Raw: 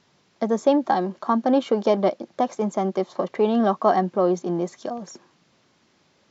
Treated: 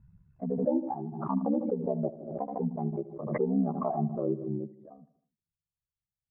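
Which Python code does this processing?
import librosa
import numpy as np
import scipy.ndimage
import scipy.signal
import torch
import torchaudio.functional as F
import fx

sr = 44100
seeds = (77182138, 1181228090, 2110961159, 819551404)

y = fx.bin_expand(x, sr, power=2.0)
y = scipy.signal.sosfilt(scipy.signal.butter(4, 1100.0, 'lowpass', fs=sr, output='sos'), y)
y = fx.env_lowpass_down(y, sr, base_hz=700.0, full_db=-23.5)
y = fx.peak_eq(y, sr, hz=180.0, db=6.5, octaves=0.82)
y = y * np.sin(2.0 * np.pi * 35.0 * np.arange(len(y)) / sr)
y = fx.echo_feedback(y, sr, ms=77, feedback_pct=51, wet_db=-17)
y = fx.pre_swell(y, sr, db_per_s=60.0)
y = F.gain(torch.from_numpy(y), -4.5).numpy()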